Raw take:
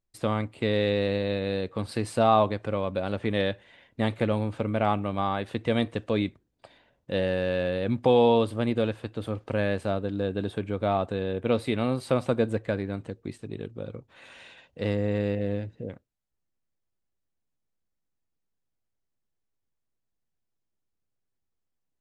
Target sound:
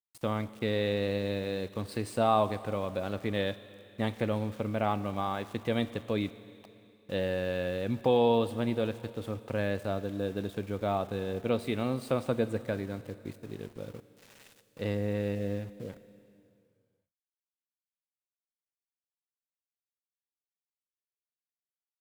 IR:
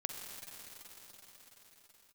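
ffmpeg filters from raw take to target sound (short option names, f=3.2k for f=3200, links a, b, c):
-filter_complex "[0:a]aeval=exprs='val(0)*gte(abs(val(0)),0.00596)':c=same,asplit=2[a][b];[1:a]atrim=start_sample=2205,asetrate=79380,aresample=44100,highshelf=f=7.4k:g=10.5[c];[b][c]afir=irnorm=-1:irlink=0,volume=-5.5dB[d];[a][d]amix=inputs=2:normalize=0,volume=-6.5dB"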